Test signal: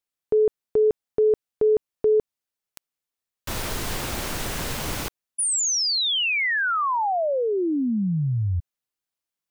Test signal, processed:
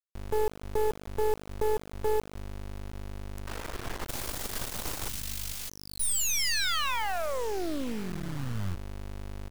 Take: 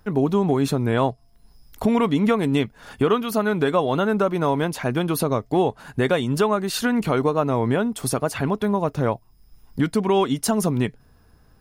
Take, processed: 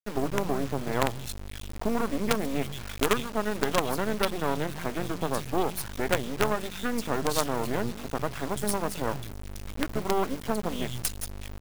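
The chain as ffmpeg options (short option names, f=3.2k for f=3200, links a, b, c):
-filter_complex "[0:a]aeval=exprs='val(0)+0.0126*(sin(2*PI*50*n/s)+sin(2*PI*2*50*n/s)/2+sin(2*PI*3*50*n/s)/3+sin(2*PI*4*50*n/s)/4+sin(2*PI*5*50*n/s)/5)':c=same,highshelf=f=4.9k:g=4,areverse,acompressor=mode=upward:threshold=-23dB:ratio=2.5:attack=0.17:release=33:knee=2.83:detection=peak,areverse,acrossover=split=170|2400[a][b][c];[a]adelay=150[d];[c]adelay=610[e];[d][b][e]amix=inputs=3:normalize=0,acrusher=bits=3:dc=4:mix=0:aa=0.000001,volume=-4dB"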